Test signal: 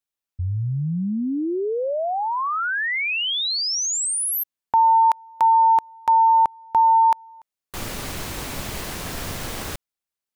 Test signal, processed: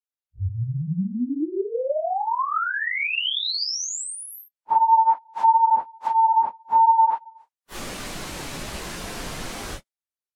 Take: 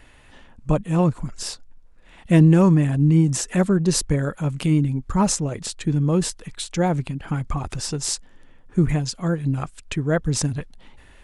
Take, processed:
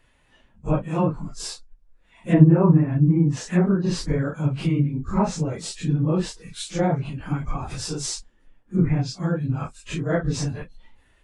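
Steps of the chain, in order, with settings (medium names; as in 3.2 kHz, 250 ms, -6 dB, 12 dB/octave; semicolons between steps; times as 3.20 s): phase randomisation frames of 100 ms; low-pass that closes with the level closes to 1.4 kHz, closed at -12 dBFS; spectral noise reduction 9 dB; trim -1.5 dB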